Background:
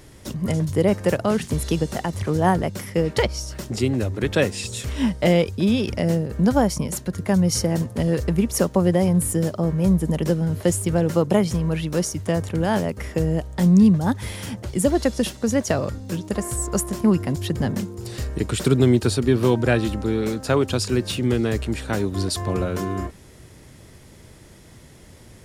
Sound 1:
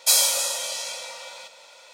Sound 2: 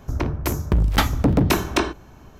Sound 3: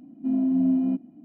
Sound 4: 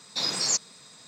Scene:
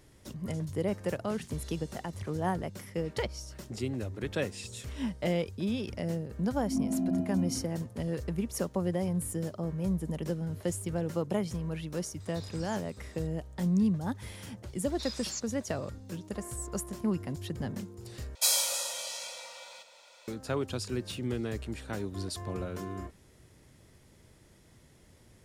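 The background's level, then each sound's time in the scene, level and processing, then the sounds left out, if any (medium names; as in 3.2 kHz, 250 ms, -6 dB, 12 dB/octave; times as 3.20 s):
background -12.5 dB
6.42 s: add 3 -12 dB + spring tank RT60 1.1 s, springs 60 ms, DRR -9 dB
12.20 s: add 4 -10 dB + compression, threshold -38 dBFS
14.83 s: add 4 -13.5 dB + high-pass 1.1 kHz
18.35 s: replace with 1 -8 dB
not used: 2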